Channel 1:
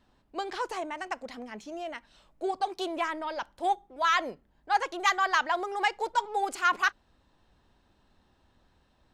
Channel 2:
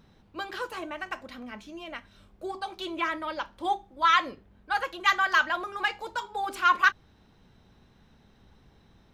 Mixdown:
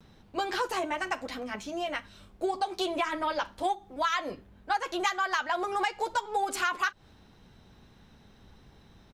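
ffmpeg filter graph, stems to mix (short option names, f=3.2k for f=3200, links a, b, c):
-filter_complex "[0:a]agate=range=-33dB:threshold=-53dB:ratio=3:detection=peak,volume=2.5dB,asplit=2[a][b];[1:a]adelay=6,volume=2.5dB[c];[b]apad=whole_len=402924[d];[c][d]sidechaincompress=threshold=-29dB:ratio=8:attack=35:release=211[e];[a][e]amix=inputs=2:normalize=0,equalizer=f=9.2k:w=0.42:g=3,acompressor=threshold=-25dB:ratio=6"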